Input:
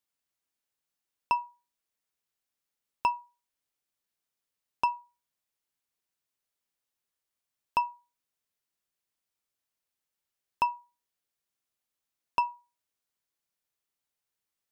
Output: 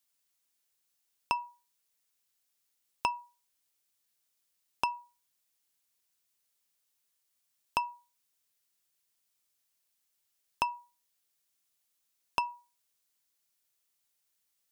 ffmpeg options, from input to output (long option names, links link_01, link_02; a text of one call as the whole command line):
ffmpeg -i in.wav -af "acompressor=threshold=-28dB:ratio=6,highshelf=frequency=2800:gain=10" out.wav